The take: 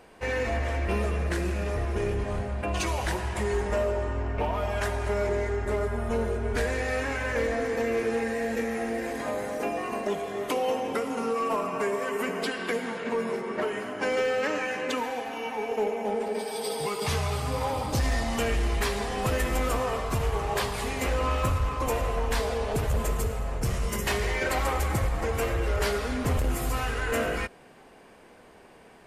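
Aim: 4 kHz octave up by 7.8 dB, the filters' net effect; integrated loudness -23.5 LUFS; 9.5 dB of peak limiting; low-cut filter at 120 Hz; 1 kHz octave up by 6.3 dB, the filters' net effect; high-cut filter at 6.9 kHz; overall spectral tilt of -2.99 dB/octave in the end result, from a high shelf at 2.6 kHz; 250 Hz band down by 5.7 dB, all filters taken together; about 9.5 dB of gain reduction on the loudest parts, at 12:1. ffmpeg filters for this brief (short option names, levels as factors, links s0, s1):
-af "highpass=120,lowpass=6900,equalizer=f=250:t=o:g=-7.5,equalizer=f=1000:t=o:g=7,highshelf=f=2600:g=8,equalizer=f=4000:t=o:g=3.5,acompressor=threshold=0.0355:ratio=12,volume=3.55,alimiter=limit=0.178:level=0:latency=1"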